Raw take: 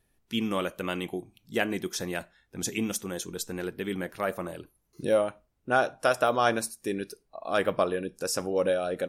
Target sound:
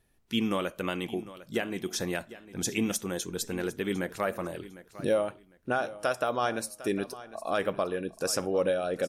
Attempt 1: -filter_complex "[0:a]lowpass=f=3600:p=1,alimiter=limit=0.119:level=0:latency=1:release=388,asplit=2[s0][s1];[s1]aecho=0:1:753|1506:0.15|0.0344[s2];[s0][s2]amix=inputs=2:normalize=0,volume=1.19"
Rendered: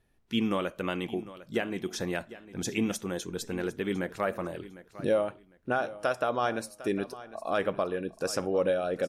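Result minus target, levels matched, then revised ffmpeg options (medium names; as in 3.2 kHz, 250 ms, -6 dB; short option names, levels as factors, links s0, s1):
8 kHz band -5.5 dB
-filter_complex "[0:a]lowpass=f=13000:p=1,alimiter=limit=0.119:level=0:latency=1:release=388,asplit=2[s0][s1];[s1]aecho=0:1:753|1506:0.15|0.0344[s2];[s0][s2]amix=inputs=2:normalize=0,volume=1.19"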